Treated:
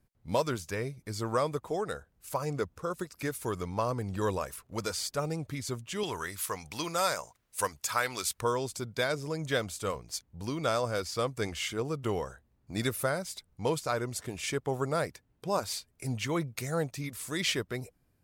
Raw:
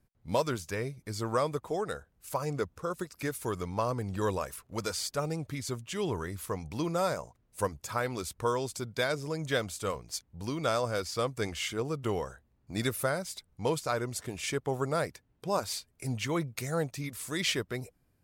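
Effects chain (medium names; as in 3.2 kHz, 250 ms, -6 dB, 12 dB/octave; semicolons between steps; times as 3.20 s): 6.03–8.41 s: tilt shelf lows -8.5 dB, about 750 Hz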